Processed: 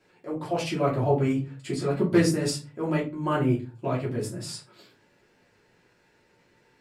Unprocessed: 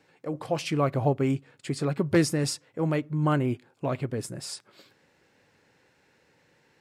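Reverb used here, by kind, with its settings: simulated room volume 120 m³, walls furnished, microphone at 2.9 m; trim -6 dB

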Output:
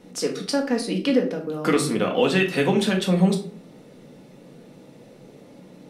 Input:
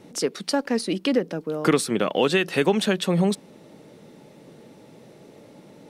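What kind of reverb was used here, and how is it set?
simulated room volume 470 m³, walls furnished, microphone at 1.9 m; trim -2.5 dB

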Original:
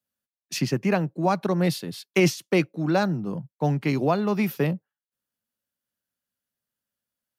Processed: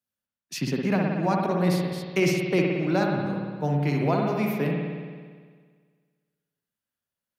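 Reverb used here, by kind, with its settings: spring tank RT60 1.7 s, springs 56 ms, chirp 40 ms, DRR -0.5 dB; trim -4 dB

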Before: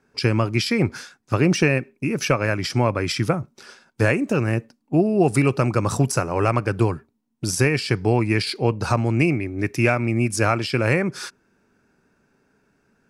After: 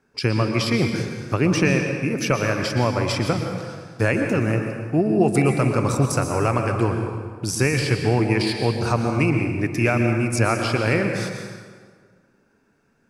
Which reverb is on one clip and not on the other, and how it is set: plate-style reverb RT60 1.7 s, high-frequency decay 0.7×, pre-delay 105 ms, DRR 4 dB; trim -1.5 dB

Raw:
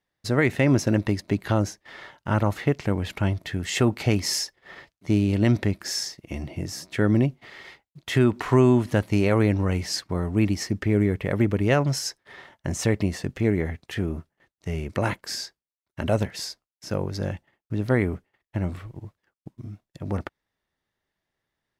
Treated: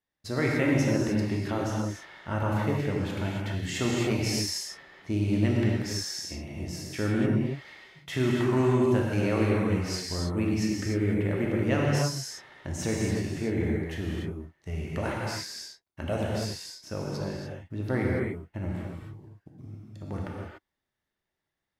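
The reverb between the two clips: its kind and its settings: gated-style reverb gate 320 ms flat, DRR -3.5 dB; trim -8.5 dB

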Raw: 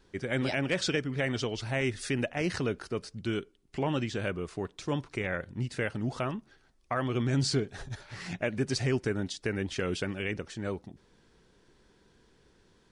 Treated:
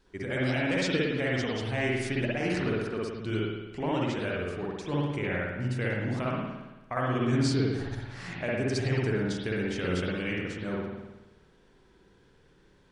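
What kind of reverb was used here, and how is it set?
spring tank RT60 1.1 s, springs 55 ms, chirp 55 ms, DRR -4.5 dB; trim -3.5 dB

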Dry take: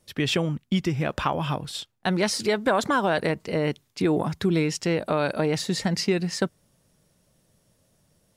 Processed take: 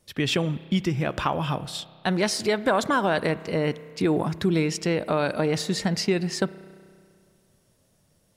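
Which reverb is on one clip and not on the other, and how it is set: spring tank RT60 2.1 s, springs 31 ms, chirp 30 ms, DRR 16.5 dB

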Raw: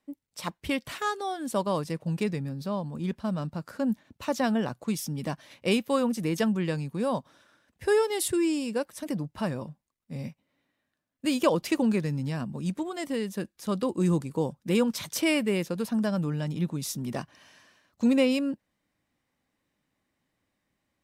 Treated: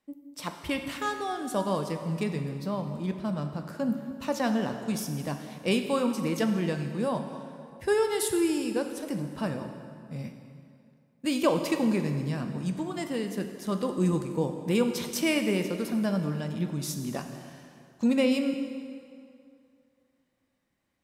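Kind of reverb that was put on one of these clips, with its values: plate-style reverb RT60 2.4 s, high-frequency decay 0.75×, DRR 5.5 dB; trim -1.5 dB

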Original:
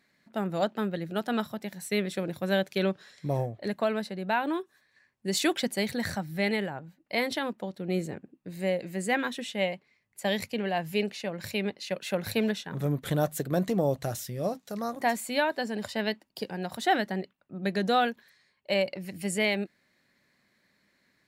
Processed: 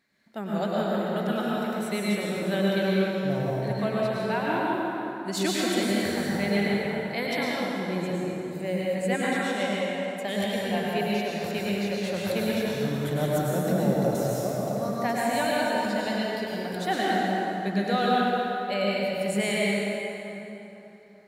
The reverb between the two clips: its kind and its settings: plate-style reverb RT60 3.5 s, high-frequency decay 0.6×, pre-delay 90 ms, DRR -6 dB; trim -4 dB

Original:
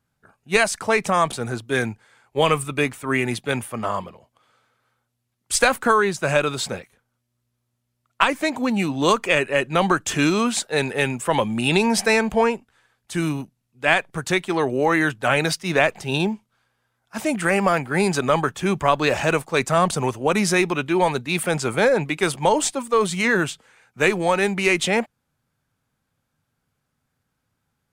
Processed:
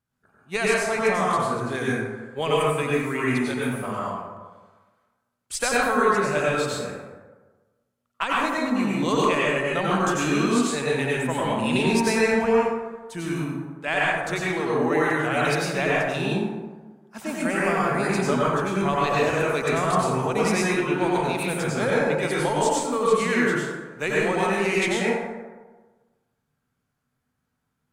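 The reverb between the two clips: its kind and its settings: plate-style reverb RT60 1.3 s, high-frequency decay 0.45×, pre-delay 80 ms, DRR -6 dB; trim -9.5 dB

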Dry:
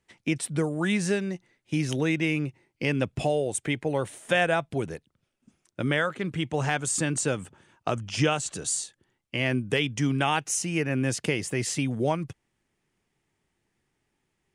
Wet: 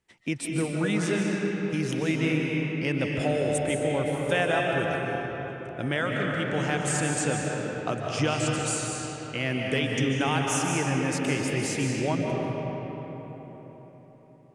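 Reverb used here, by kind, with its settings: algorithmic reverb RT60 4.5 s, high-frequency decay 0.55×, pre-delay 105 ms, DRR -1.5 dB; trim -3 dB

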